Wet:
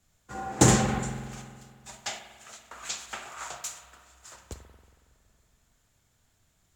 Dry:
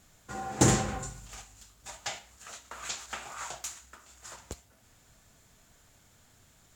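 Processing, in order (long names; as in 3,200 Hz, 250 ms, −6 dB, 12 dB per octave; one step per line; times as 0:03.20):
spring reverb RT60 2.8 s, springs 46 ms, chirp 50 ms, DRR 6.5 dB
multiband upward and downward expander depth 40%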